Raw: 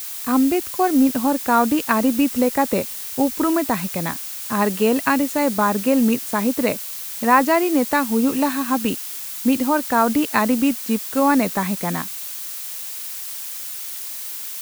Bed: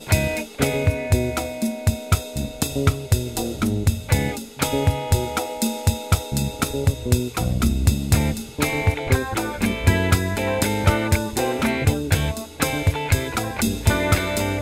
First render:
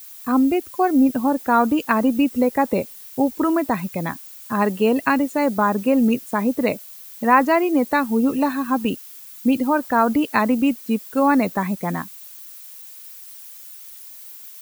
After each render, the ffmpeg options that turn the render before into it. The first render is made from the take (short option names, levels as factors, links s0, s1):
-af "afftdn=nr=13:nf=-31"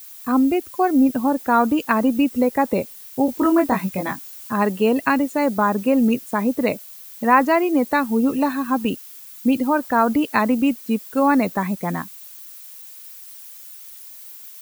-filter_complex "[0:a]asettb=1/sr,asplit=3[s0][s1][s2];[s0]atrim=end=3.264[s3];[s1]atrim=start=3.26:end=4.5,asetpts=PTS-STARTPTS,afade=t=in:d=0.004:c=qsin,afade=t=out:st=1.236:d=0.004:c=qsin,asplit=2[s4][s5];[s5]adelay=21,volume=0.708[s6];[s4][s6]amix=inputs=2:normalize=0,atrim=end_sample=54684[s7];[s2]atrim=start=4.496[s8];[s3][s7]acrossfade=d=0.004:c1=hsin:c2=qsin[s9];[s9][s8]acrossfade=d=0.004:c1=qsin:c2=hsin"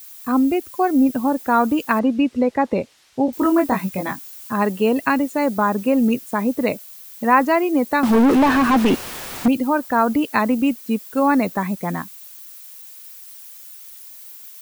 -filter_complex "[0:a]asettb=1/sr,asplit=3[s0][s1][s2];[s0]atrim=end=1.994[s3];[s1]atrim=start=1.99:end=3.33,asetpts=PTS-STARTPTS,afade=t=in:d=0.004:c=qsin,afade=t=out:st=1.336:d=0.004:c=qsin,lowpass=4500[s4];[s2]atrim=start=3.326[s5];[s3][s4]acrossfade=d=0.004:c1=hsin:c2=qsin[s6];[s6][s5]acrossfade=d=0.004:c1=qsin:c2=hsin,asettb=1/sr,asplit=3[s7][s8][s9];[s7]atrim=end=8.034[s10];[s8]atrim=start=8.03:end=9.48,asetpts=PTS-STARTPTS,afade=t=in:d=0.004:c=qsin,afade=t=out:st=1.446:d=0.004:c=qsin,asplit=2[s11][s12];[s12]highpass=f=720:p=1,volume=89.1,asoftclip=type=tanh:threshold=0.473[s13];[s11][s13]amix=inputs=2:normalize=0,lowpass=f=1100:p=1,volume=0.501[s14];[s9]atrim=start=9.476[s15];[s10][s14]acrossfade=d=0.004:c1=hsin:c2=qsin[s16];[s16][s15]acrossfade=d=0.004:c1=qsin:c2=hsin"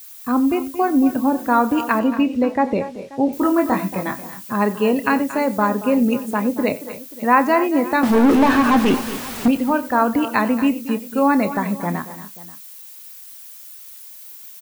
-filter_complex "[0:a]asplit=2[s0][s1];[s1]adelay=29,volume=0.224[s2];[s0][s2]amix=inputs=2:normalize=0,aecho=1:1:91|229|260|533:0.119|0.2|0.126|0.1"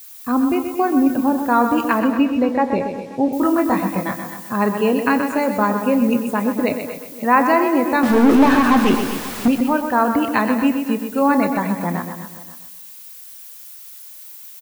-af "aecho=1:1:127|254|381|508|635:0.398|0.167|0.0702|0.0295|0.0124"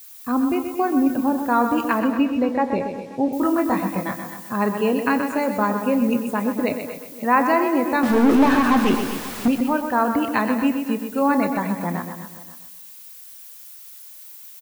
-af "volume=0.708"